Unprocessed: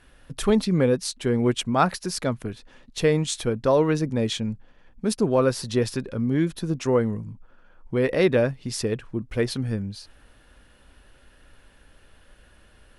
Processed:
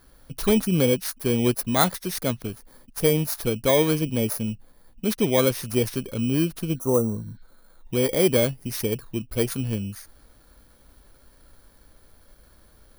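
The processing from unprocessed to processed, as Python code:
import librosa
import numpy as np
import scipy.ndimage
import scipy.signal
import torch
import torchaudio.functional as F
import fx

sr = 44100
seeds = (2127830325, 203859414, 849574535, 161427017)

y = fx.bit_reversed(x, sr, seeds[0], block=16)
y = fx.spec_repair(y, sr, seeds[1], start_s=6.77, length_s=0.78, low_hz=1400.0, high_hz=5600.0, source='after')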